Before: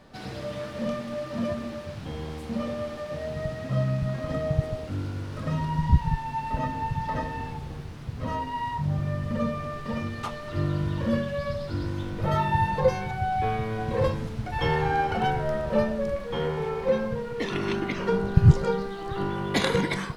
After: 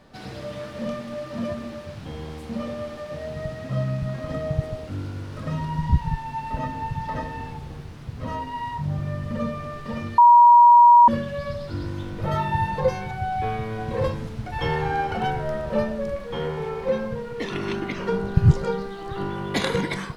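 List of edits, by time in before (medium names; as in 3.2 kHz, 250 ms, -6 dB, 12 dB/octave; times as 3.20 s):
10.18–11.08 s: bleep 956 Hz -8 dBFS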